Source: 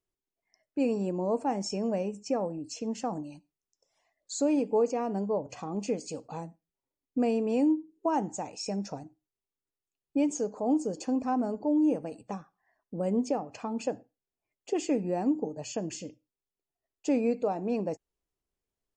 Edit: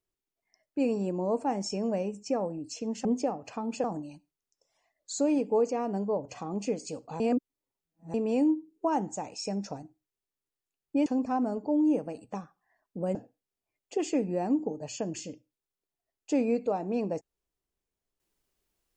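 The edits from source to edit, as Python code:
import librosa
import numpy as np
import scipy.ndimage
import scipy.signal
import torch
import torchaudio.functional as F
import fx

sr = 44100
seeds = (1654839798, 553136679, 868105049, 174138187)

y = fx.edit(x, sr, fx.reverse_span(start_s=6.41, length_s=0.94),
    fx.cut(start_s=10.27, length_s=0.76),
    fx.move(start_s=13.12, length_s=0.79, to_s=3.05), tone=tone)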